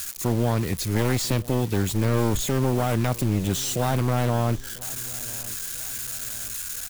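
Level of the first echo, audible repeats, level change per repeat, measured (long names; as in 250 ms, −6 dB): −21.0 dB, 3, −6.5 dB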